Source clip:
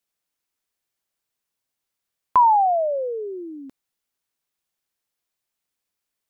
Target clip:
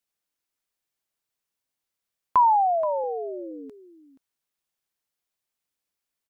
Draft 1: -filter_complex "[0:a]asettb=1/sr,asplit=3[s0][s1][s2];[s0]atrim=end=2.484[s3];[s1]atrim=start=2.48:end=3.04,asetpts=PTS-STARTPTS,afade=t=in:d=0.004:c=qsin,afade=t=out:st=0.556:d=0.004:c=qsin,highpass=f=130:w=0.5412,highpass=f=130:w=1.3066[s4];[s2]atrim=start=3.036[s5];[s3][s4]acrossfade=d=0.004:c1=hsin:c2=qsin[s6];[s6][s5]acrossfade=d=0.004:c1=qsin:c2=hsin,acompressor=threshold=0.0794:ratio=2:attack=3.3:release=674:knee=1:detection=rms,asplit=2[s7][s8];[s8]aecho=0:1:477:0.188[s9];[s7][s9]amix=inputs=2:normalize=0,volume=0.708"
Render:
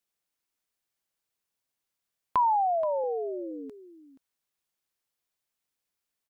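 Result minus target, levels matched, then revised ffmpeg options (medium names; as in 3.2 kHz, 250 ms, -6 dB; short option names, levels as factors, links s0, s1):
compression: peak gain reduction +6.5 dB
-filter_complex "[0:a]asettb=1/sr,asplit=3[s0][s1][s2];[s0]atrim=end=2.484[s3];[s1]atrim=start=2.48:end=3.04,asetpts=PTS-STARTPTS,afade=t=in:d=0.004:c=qsin,afade=t=out:st=0.556:d=0.004:c=qsin,highpass=f=130:w=0.5412,highpass=f=130:w=1.3066[s4];[s2]atrim=start=3.036[s5];[s3][s4]acrossfade=d=0.004:c1=hsin:c2=qsin[s6];[s6][s5]acrossfade=d=0.004:c1=qsin:c2=hsin,asplit=2[s7][s8];[s8]aecho=0:1:477:0.188[s9];[s7][s9]amix=inputs=2:normalize=0,volume=0.708"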